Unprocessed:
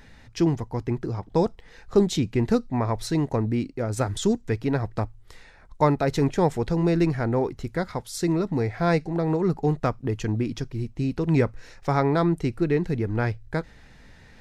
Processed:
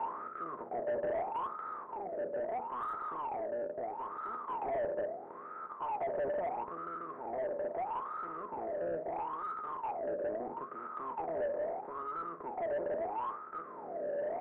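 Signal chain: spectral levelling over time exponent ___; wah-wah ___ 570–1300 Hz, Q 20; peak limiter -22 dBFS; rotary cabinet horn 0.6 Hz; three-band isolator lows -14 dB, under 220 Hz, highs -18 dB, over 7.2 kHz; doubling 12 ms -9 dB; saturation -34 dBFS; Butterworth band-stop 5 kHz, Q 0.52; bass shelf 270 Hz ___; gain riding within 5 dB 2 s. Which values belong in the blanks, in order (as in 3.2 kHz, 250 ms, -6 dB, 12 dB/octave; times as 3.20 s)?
0.2, 0.76 Hz, +10.5 dB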